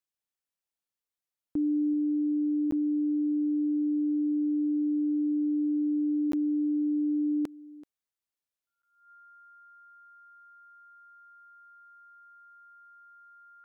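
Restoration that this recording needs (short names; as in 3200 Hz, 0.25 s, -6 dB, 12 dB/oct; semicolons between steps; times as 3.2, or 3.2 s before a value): notch 1400 Hz, Q 30; interpolate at 2.71/6.32/8.82, 13 ms; inverse comb 0.382 s -20.5 dB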